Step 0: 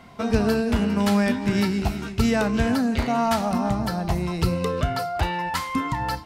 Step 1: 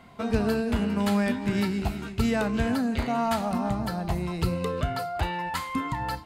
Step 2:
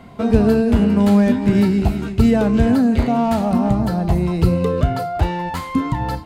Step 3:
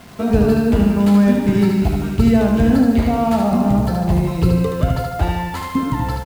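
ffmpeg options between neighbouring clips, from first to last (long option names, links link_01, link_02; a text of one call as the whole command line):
ffmpeg -i in.wav -af "equalizer=frequency=5600:width_type=o:width=0.23:gain=-8,volume=-4dB" out.wav
ffmpeg -i in.wav -filter_complex "[0:a]acrossover=split=660[link_01][link_02];[link_01]acontrast=73[link_03];[link_02]asoftclip=type=tanh:threshold=-31dB[link_04];[link_03][link_04]amix=inputs=2:normalize=0,volume=5dB" out.wav
ffmpeg -i in.wav -af "acrusher=bits=6:mix=0:aa=0.000001,aecho=1:1:75|150|225|300|375|450|525:0.596|0.31|0.161|0.0838|0.0436|0.0226|0.0118,volume=-1dB" out.wav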